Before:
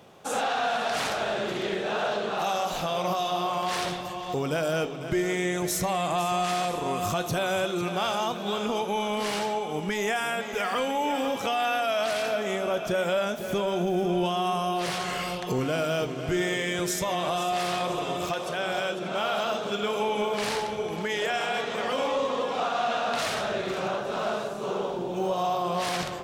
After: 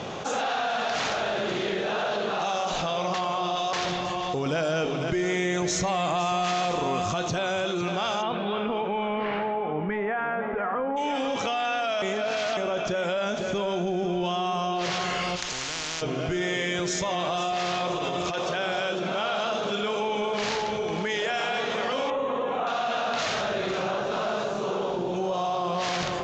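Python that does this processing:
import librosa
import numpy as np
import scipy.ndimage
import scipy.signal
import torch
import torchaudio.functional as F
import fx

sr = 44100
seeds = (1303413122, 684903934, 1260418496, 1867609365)

y = fx.lowpass(x, sr, hz=fx.line((8.21, 3400.0), (10.96, 1400.0)), slope=24, at=(8.21, 10.96), fade=0.02)
y = fx.spectral_comp(y, sr, ratio=10.0, at=(15.35, 16.01), fade=0.02)
y = fx.over_compress(y, sr, threshold_db=-31.0, ratio=-0.5, at=(17.94, 18.53))
y = fx.moving_average(y, sr, points=9, at=(22.1, 22.67))
y = fx.edit(y, sr, fx.reverse_span(start_s=3.14, length_s=0.59),
    fx.clip_gain(start_s=4.46, length_s=2.56, db=5.0),
    fx.reverse_span(start_s=12.02, length_s=0.55), tone=tone)
y = scipy.signal.sosfilt(scipy.signal.ellip(4, 1.0, 40, 6900.0, 'lowpass', fs=sr, output='sos'), y)
y = fx.env_flatten(y, sr, amount_pct=70)
y = F.gain(torch.from_numpy(y), -5.5).numpy()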